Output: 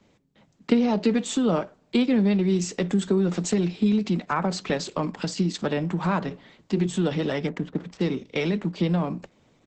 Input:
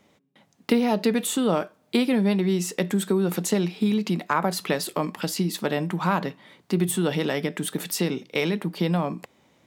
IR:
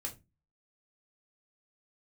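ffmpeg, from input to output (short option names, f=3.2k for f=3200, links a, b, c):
-filter_complex "[0:a]acrossover=split=150|630|5200[a][b][c][d];[a]acompressor=threshold=-44dB:ratio=6[e];[e][b][c][d]amix=inputs=4:normalize=0,lowshelf=f=220:g=10,asettb=1/sr,asplit=3[f][g][h];[f]atrim=end=6.194[i];[g]atrim=start=6.19:end=6.86,asetpts=PTS-STARTPTS,afade=t=in:d=0.004:c=qsin,afade=t=out:st=0.666:d=0.004:c=qsin,bandreject=f=60:t=h:w=6,bandreject=f=120:t=h:w=6,bandreject=f=180:t=h:w=6,bandreject=f=240:t=h:w=6,bandreject=f=300:t=h:w=6,bandreject=f=360:t=h:w=6,bandreject=f=420:t=h:w=6,bandreject=f=480:t=h:w=6,bandreject=f=540:t=h:w=6[j];[h]atrim=start=6.856[k];[i][j]acrossfade=d=0.004:c1=hsin:c2=qsin[l];[l][k]acrossfade=d=0.004:c1=qsin:c2=hsin,asplit=2[m][n];[n]adelay=63,lowpass=f=1.9k:p=1,volume=-22dB,asplit=2[o][p];[p]adelay=63,lowpass=f=1.9k:p=1,volume=0.35[q];[m][o][q]amix=inputs=3:normalize=0,asettb=1/sr,asplit=3[r][s][t];[r]atrim=end=7.474[u];[s]atrim=start=7.47:end=8.01,asetpts=PTS-STARTPTS,afade=t=in:d=0.004:c=qsin,afade=t=out:st=0.536:d=0.004:c=qsin,adynamicsmooth=sensitivity=3:basefreq=650[v];[t]atrim=start=8.006[w];[u][v]acrossfade=d=0.004:c1=hsin:c2=qsin[x];[x][w]acrossfade=d=0.004:c1=qsin:c2=hsin,volume=-2.5dB" -ar 48000 -c:a libopus -b:a 10k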